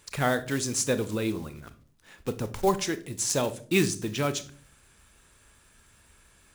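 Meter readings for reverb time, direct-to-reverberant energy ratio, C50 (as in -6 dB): 0.45 s, 11.5 dB, 16.0 dB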